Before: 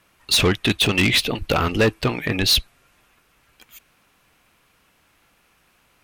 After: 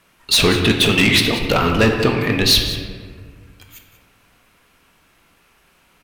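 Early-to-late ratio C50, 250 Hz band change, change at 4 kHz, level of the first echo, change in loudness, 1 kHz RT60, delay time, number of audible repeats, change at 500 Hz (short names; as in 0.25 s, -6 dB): 5.0 dB, +5.0 dB, +4.0 dB, -15.0 dB, +4.0 dB, 1.6 s, 0.185 s, 1, +4.5 dB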